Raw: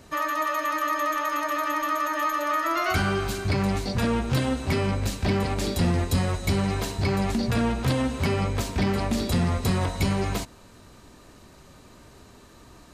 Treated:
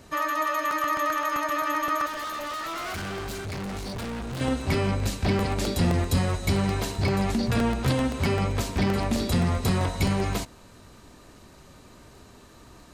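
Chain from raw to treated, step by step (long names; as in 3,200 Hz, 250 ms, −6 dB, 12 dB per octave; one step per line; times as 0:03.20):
0:02.06–0:04.41: hard clipping −31.5 dBFS, distortion −10 dB
regular buffer underruns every 0.13 s, samples 64, repeat, from 0:00.71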